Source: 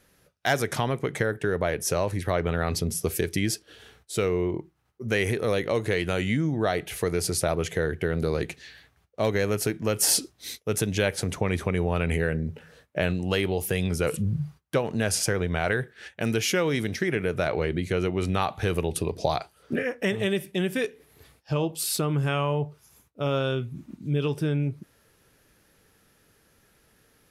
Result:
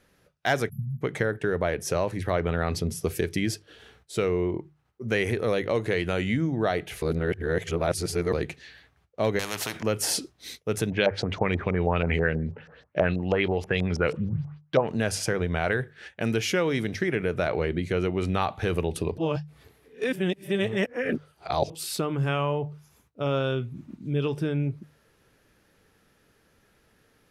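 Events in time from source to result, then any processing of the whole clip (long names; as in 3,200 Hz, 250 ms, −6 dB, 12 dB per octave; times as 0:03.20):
0:00.69–0:01.02: time-frequency box erased 230–11,000 Hz
0:07.02–0:08.33: reverse
0:09.39–0:09.83: every bin compressed towards the loudest bin 4 to 1
0:10.90–0:14.88: auto-filter low-pass saw up 6.2 Hz 630–6,300 Hz
0:19.18–0:21.70: reverse
whole clip: high-shelf EQ 6,500 Hz −9.5 dB; mains-hum notches 50/100/150 Hz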